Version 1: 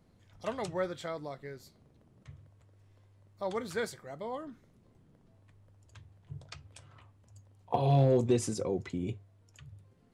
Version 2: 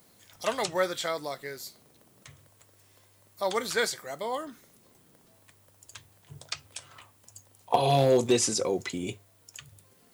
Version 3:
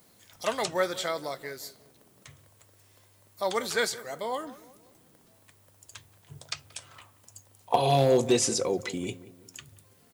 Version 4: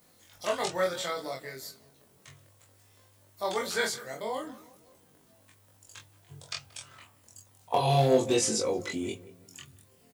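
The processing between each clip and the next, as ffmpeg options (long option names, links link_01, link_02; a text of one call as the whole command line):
ffmpeg -i in.wav -filter_complex "[0:a]aemphasis=mode=production:type=riaa,acrossover=split=6400[link_01][link_02];[link_02]acompressor=threshold=-50dB:ratio=4:attack=1:release=60[link_03];[link_01][link_03]amix=inputs=2:normalize=0,volume=8dB" out.wav
ffmpeg -i in.wav -filter_complex "[0:a]asplit=2[link_01][link_02];[link_02]adelay=180,lowpass=frequency=1200:poles=1,volume=-16dB,asplit=2[link_03][link_04];[link_04]adelay=180,lowpass=frequency=1200:poles=1,volume=0.48,asplit=2[link_05][link_06];[link_06]adelay=180,lowpass=frequency=1200:poles=1,volume=0.48,asplit=2[link_07][link_08];[link_08]adelay=180,lowpass=frequency=1200:poles=1,volume=0.48[link_09];[link_01][link_03][link_05][link_07][link_09]amix=inputs=5:normalize=0" out.wav
ffmpeg -i in.wav -filter_complex "[0:a]flanger=delay=19:depth=3.6:speed=0.35,asplit=2[link_01][link_02];[link_02]adelay=23,volume=-3dB[link_03];[link_01][link_03]amix=inputs=2:normalize=0" out.wav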